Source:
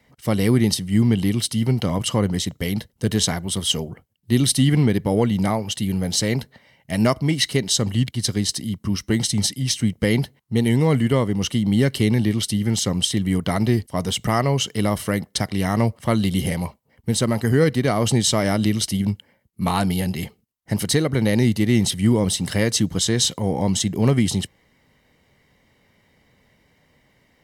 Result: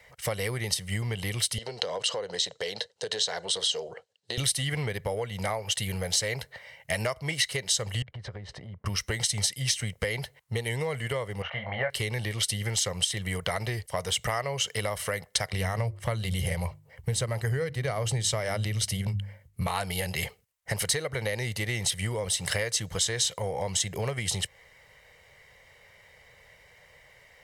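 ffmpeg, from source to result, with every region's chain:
-filter_complex "[0:a]asettb=1/sr,asplit=3[a][b][c];[a]atrim=end=1.584[d];[b]atrim=start=1.58:end=4.38,asetpts=PTS-STARTPTS,afade=t=in:d=0.004:c=qsin,afade=t=out:st=2.796:d=0.004:c=qsin,acompressor=threshold=-24dB:ratio=4:attack=3.2:release=140:knee=1:detection=peak,highpass=290,equalizer=f=460:t=q:w=4:g=6,equalizer=f=1.2k:t=q:w=4:g=-5,equalizer=f=2.2k:t=q:w=4:g=-8,equalizer=f=4.1k:t=q:w=4:g=8,lowpass=f=7.5k:w=0.5412,lowpass=f=7.5k:w=1.3066[e];[c]atrim=start=4.376[f];[d][e]acrossfade=d=0.004:c1=hsin:c2=qsin[g];[g][f]acrossfade=d=0.004:c1=qsin:c2=hsin,asettb=1/sr,asplit=3[h][i][j];[h]atrim=end=8.024[k];[i]atrim=start=8.02:end=8.86,asetpts=PTS-STARTPTS,afade=t=in:d=0.004:c=qsin,afade=t=out:st=0.836:d=0.004:c=qsin,lowpass=1.2k,acompressor=threshold=-32dB:ratio=6:attack=3.2:release=140:knee=1:detection=peak[l];[j]atrim=start=8.856[m];[k][l]acrossfade=d=0.004:c1=hsin:c2=qsin[n];[n][m]acrossfade=d=0.004:c1=qsin:c2=hsin,asettb=1/sr,asplit=3[o][p][q];[o]atrim=end=11.424[r];[p]atrim=start=11.42:end=11.9,asetpts=PTS-STARTPTS,afade=t=in:d=0.004:c=qsin,afade=t=out:st=0.476:d=0.004:c=qsin,lowpass=f=2.1k:w=0.5412,lowpass=f=2.1k:w=1.3066,lowshelf=f=480:t=q:w=3:g=-10.5,asplit=2[s][t];[t]adelay=23,volume=-5dB[u];[s][u]amix=inputs=2:normalize=0,atrim=end_sample=21168[v];[q]atrim=start=11.896[w];[r][v]acrossfade=d=0.004:c1=hsin:c2=qsin[x];[x][w]acrossfade=d=0.004:c1=qsin:c2=hsin,asettb=1/sr,asplit=3[y][z][aa];[y]atrim=end=15.534[ab];[z]atrim=start=15.53:end=19.67,asetpts=PTS-STARTPTS,afade=t=in:d=0.004:c=qsin,afade=t=out:st=4.136:d=0.004:c=qsin,equalizer=f=100:w=0.49:g=10.5,bandreject=f=50:t=h:w=6,bandreject=f=100:t=h:w=6,bandreject=f=150:t=h:w=6,bandreject=f=200:t=h:w=6,bandreject=f=250:t=h:w=6,bandreject=f=300:t=h:w=6,bandreject=f=350:t=h:w=6[ac];[aa]atrim=start=19.666[ad];[ab][ac]acrossfade=d=0.004:c1=hsin:c2=qsin[ae];[ae][ad]acrossfade=d=0.004:c1=qsin:c2=hsin,equalizer=f=250:t=o:w=1:g=-12,equalizer=f=500:t=o:w=1:g=11,equalizer=f=2k:t=o:w=1:g=6,equalizer=f=8k:t=o:w=1:g=4,acompressor=threshold=-26dB:ratio=6,equalizer=f=300:w=0.8:g=-10.5,volume=2.5dB"

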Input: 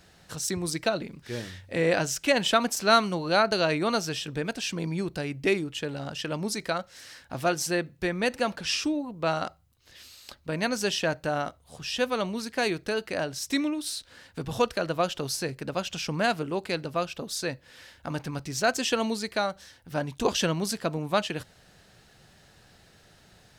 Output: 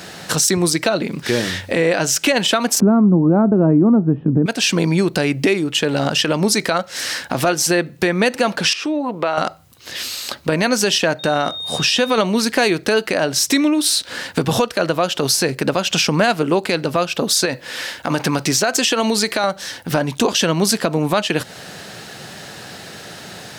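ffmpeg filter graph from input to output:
-filter_complex "[0:a]asettb=1/sr,asplit=3[a][b][c];[a]atrim=end=2.804[d];[b]atrim=start=2.8:end=4.46,asetpts=PTS-STARTPTS,afade=t=in:d=0.004:c=qsin,afade=t=out:st=1.656:d=0.004:c=qsin,lowpass=f=1k:w=0.5412,lowpass=f=1k:w=1.3066,lowshelf=f=390:t=q:w=1.5:g=12.5[e];[c]atrim=start=4.456[f];[d][e]acrossfade=d=0.004:c1=hsin:c2=qsin[g];[g][f]acrossfade=d=0.004:c1=qsin:c2=hsin,asettb=1/sr,asplit=3[h][i][j];[h]atrim=end=8.734[k];[i]atrim=start=8.73:end=9.38,asetpts=PTS-STARTPTS,afade=t=in:d=0.004:c=qsin,afade=t=out:st=0.646:d=0.004:c=qsin,highpass=58,bass=f=250:g=-13,treble=f=4k:g=-11,acompressor=threshold=-41dB:ratio=3:attack=3.2:release=140:knee=1:detection=peak[l];[j]atrim=start=9.376[m];[k][l]acrossfade=d=0.004:c1=hsin:c2=qsin[n];[n][m]acrossfade=d=0.004:c1=qsin:c2=hsin,asettb=1/sr,asplit=3[o][p][q];[o]atrim=end=11.194[r];[p]atrim=start=11.19:end=12.18,asetpts=PTS-STARTPTS,afade=t=in:d=0.004:c=qsin,afade=t=out:st=0.986:d=0.004:c=qsin,equalizer=f=12k:t=o:w=0.24:g=-5.5,acompressor=threshold=-31dB:ratio=3:attack=3.2:release=140:knee=1:detection=peak,aeval=exprs='val(0)+0.00447*sin(2*PI*3700*n/s)':c=same[s];[q]atrim=start=12.176[t];[r][s]acrossfade=d=0.004:c1=hsin:c2=qsin[u];[u][t]acrossfade=d=0.004:c1=qsin:c2=hsin,asettb=1/sr,asplit=3[v][w][x];[v]atrim=end=17.454[y];[w]atrim=start=17.45:end=19.44,asetpts=PTS-STARTPTS,afade=t=in:d=0.004:c=qsin,afade=t=out:st=1.986:d=0.004:c=qsin,lowshelf=f=210:g=-6,acompressor=threshold=-31dB:ratio=6:attack=3.2:release=140:knee=1:detection=peak[z];[x]atrim=start=19.436[aa];[y][z]acrossfade=d=0.004:c1=hsin:c2=qsin[ab];[ab][aa]acrossfade=d=0.004:c1=qsin:c2=hsin,highpass=160,acompressor=threshold=-37dB:ratio=4,alimiter=level_in=27.5dB:limit=-1dB:release=50:level=0:latency=1,volume=-4.5dB"

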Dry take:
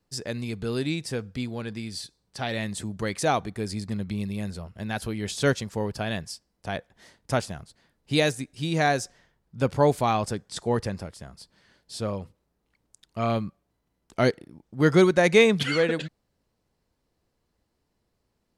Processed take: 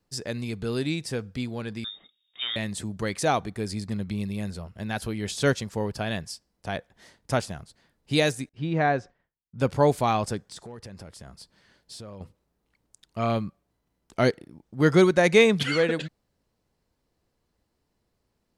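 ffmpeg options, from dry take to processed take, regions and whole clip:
-filter_complex "[0:a]asettb=1/sr,asplit=3[a][b][c];[a]atrim=end=1.844[d];[b]atrim=start=1.84:end=2.56,asetpts=PTS-STARTPTS,afade=t=in:d=0.004:c=qsin,afade=t=out:st=0.716:d=0.004:c=qsin,highshelf=f=2.2k:g=-11,lowpass=f=3.2k:t=q:w=0.5098,lowpass=f=3.2k:t=q:w=0.6013,lowpass=f=3.2k:t=q:w=0.9,lowpass=f=3.2k:t=q:w=2.563,afreqshift=-3800[e];[c]atrim=start=2.556[f];[d][e]acrossfade=d=0.004:c1=hsin:c2=qsin[g];[g][f]acrossfade=d=0.004:c1=qsin:c2=hsin,asettb=1/sr,asplit=3[h][i][j];[h]atrim=end=8.494[k];[i]atrim=start=8.49:end=9.59,asetpts=PTS-STARTPTS,afade=t=in:d=0.004:c=qsin,afade=t=out:st=1.096:d=0.004:c=qsin,lowpass=2k,agate=range=-33dB:threshold=-54dB:ratio=3:release=100:detection=peak[l];[j]atrim=start=9.586[m];[k][l]acrossfade=d=0.004:c1=hsin:c2=qsin[n];[n][m]acrossfade=d=0.004:c1=qsin:c2=hsin,asettb=1/sr,asplit=3[o][p][q];[o]atrim=end=10.414[r];[p]atrim=start=10.41:end=12.21,asetpts=PTS-STARTPTS,afade=t=in:d=0.004:c=qsin,afade=t=out:st=1.796:d=0.004:c=qsin,acompressor=threshold=-38dB:ratio=8:attack=3.2:release=140:knee=1:detection=peak,asoftclip=type=hard:threshold=-34.5dB[s];[q]atrim=start=12.206[t];[r][s]acrossfade=d=0.004:c1=hsin:c2=qsin[u];[u][t]acrossfade=d=0.004:c1=qsin:c2=hsin"

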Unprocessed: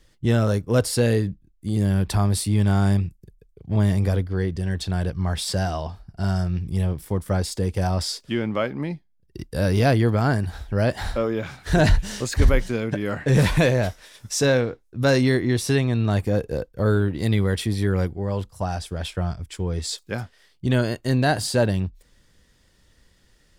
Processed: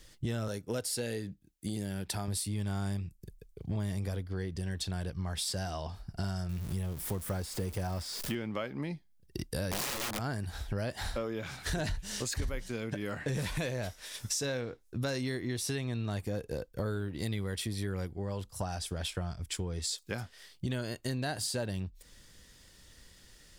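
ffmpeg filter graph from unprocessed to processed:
-filter_complex "[0:a]asettb=1/sr,asplit=3[a][b][c];[a]atrim=end=0.484[d];[b]atrim=start=0.48:end=2.28,asetpts=PTS-STARTPTS,afade=t=in:d=0.004:c=qsin,afade=t=out:st=1.796:d=0.004:c=qsin,highpass=f=200:p=1,bandreject=f=1.1k:w=5.2[e];[c]atrim=start=2.276[f];[d][e]acrossfade=d=0.004:c1=hsin:c2=qsin[g];[g][f]acrossfade=d=0.004:c1=qsin:c2=hsin,asettb=1/sr,asplit=3[h][i][j];[h]atrim=end=6.494[k];[i]atrim=start=6.49:end=8.35,asetpts=PTS-STARTPTS,afade=t=in:d=0.004:c=qsin,afade=t=out:st=1.856:d=0.004:c=qsin,aeval=exprs='val(0)+0.5*0.0224*sgn(val(0))':c=same,acrossover=split=2500[l][m];[m]acompressor=threshold=-42dB:ratio=4:attack=1:release=60[n];[l][n]amix=inputs=2:normalize=0,highshelf=f=8.7k:g=8[o];[j]atrim=start=8.346[p];[k][o]acrossfade=d=0.004:c1=hsin:c2=qsin[q];[q][p]acrossfade=d=0.004:c1=qsin:c2=hsin,asettb=1/sr,asplit=3[r][s][t];[r]atrim=end=9.714[u];[s]atrim=start=9.71:end=10.19,asetpts=PTS-STARTPTS,afade=t=in:d=0.004:c=qsin,afade=t=out:st=0.476:d=0.004:c=qsin,asplit=2[v][w];[w]adelay=15,volume=-2.5dB[x];[v][x]amix=inputs=2:normalize=0,atrim=end_sample=21168,aeval=exprs='(mod(5.96*val(0)+1,2)-1)/5.96':c=same[y];[t]atrim=start=10.186[z];[u][y]acrossfade=d=0.004:c1=hsin:c2=qsin[aa];[aa][z]acrossfade=d=0.004:c1=qsin:c2=hsin,highshelf=f=2.9k:g=8,acompressor=threshold=-33dB:ratio=6"

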